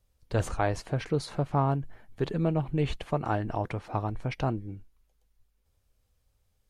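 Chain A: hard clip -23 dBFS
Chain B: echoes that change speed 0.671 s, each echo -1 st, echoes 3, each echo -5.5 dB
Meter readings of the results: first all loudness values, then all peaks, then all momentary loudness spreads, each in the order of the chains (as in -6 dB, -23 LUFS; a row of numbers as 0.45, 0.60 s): -32.0, -30.0 LUFS; -23.0, -11.5 dBFS; 6, 15 LU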